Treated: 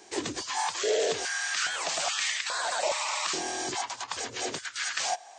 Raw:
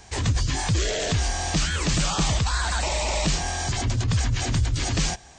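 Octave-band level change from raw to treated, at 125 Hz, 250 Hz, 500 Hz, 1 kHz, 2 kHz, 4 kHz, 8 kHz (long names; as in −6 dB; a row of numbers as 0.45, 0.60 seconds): −30.5, −12.0, +0.5, −1.5, −1.0, −3.0, −3.0 decibels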